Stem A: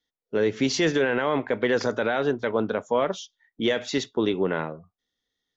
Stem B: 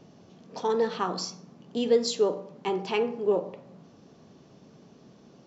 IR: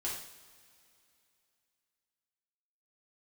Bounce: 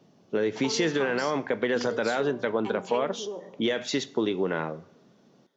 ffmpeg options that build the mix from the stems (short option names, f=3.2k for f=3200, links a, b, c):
-filter_complex "[0:a]acompressor=threshold=-25dB:ratio=3,volume=1dB,asplit=2[a][b];[b]volume=-18dB[c];[1:a]acompressor=threshold=-27dB:ratio=6,volume=-5.5dB[d];[2:a]atrim=start_sample=2205[e];[c][e]afir=irnorm=-1:irlink=0[f];[a][d][f]amix=inputs=3:normalize=0,highpass=110"